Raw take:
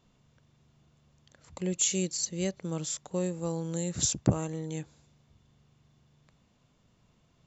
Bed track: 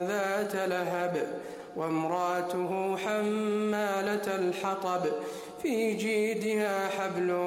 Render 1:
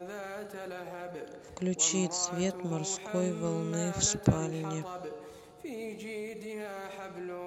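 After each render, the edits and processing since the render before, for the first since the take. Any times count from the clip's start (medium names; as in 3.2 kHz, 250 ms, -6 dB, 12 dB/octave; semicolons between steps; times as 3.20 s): add bed track -11 dB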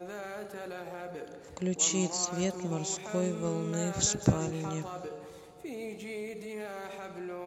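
feedback delay 190 ms, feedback 56%, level -19 dB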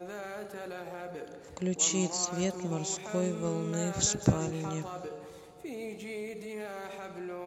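no audible change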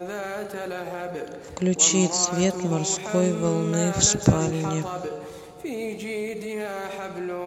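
trim +9 dB; peak limiter -3 dBFS, peak gain reduction 2.5 dB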